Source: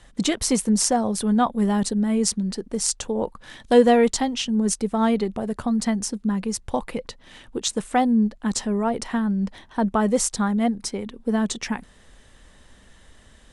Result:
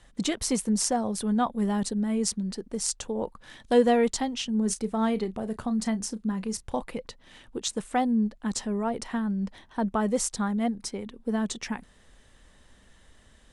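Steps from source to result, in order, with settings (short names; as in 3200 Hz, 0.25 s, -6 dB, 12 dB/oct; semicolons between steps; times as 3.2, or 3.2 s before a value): 4.51–6.82 doubler 32 ms -14 dB; gain -5.5 dB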